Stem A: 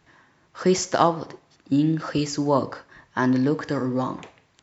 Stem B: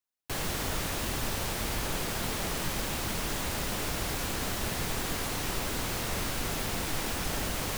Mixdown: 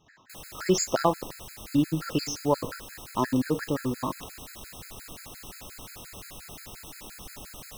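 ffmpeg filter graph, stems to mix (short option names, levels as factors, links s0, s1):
-filter_complex "[0:a]volume=0.841[s0];[1:a]volume=0.282[s1];[s0][s1]amix=inputs=2:normalize=0,highshelf=f=4300:g=6.5,afftfilt=real='re*gt(sin(2*PI*5.7*pts/sr)*(1-2*mod(floor(b*sr/1024/1300),2)),0)':imag='im*gt(sin(2*PI*5.7*pts/sr)*(1-2*mod(floor(b*sr/1024/1300),2)),0)':win_size=1024:overlap=0.75"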